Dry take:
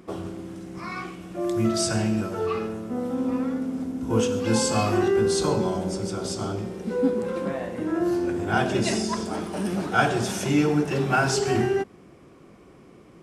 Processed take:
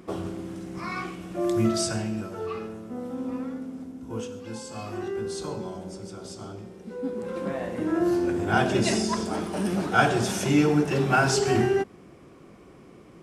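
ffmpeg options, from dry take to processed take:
-af "volume=7.94,afade=t=out:st=1.56:d=0.48:silence=0.446684,afade=t=out:st=3.39:d=1.25:silence=0.298538,afade=t=in:st=4.64:d=0.46:silence=0.473151,afade=t=in:st=7.02:d=0.71:silence=0.298538"

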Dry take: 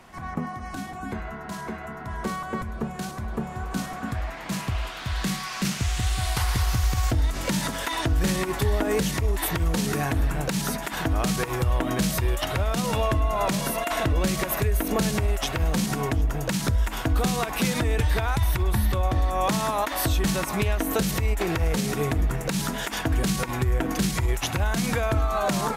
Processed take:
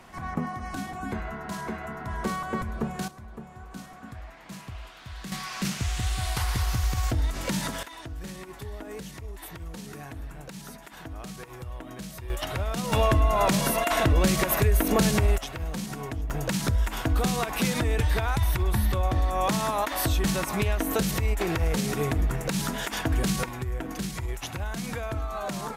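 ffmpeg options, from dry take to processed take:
-af "asetnsamples=n=441:p=0,asendcmd='3.08 volume volume -12dB;5.32 volume volume -3dB;7.83 volume volume -15dB;12.3 volume volume -4.5dB;12.92 volume volume 2dB;15.38 volume volume -8.5dB;16.3 volume volume -1.5dB;23.49 volume volume -8dB',volume=1"

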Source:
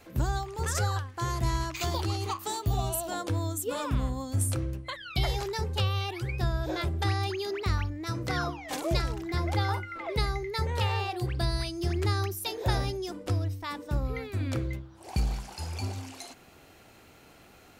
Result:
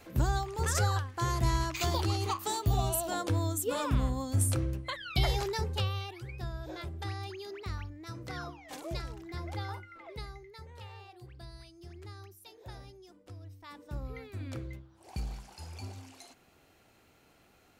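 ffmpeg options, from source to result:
-af "volume=3.35,afade=t=out:st=5.44:d=0.72:silence=0.316228,afade=t=out:st=9.63:d=1.01:silence=0.334965,afade=t=in:st=13.37:d=0.66:silence=0.298538"

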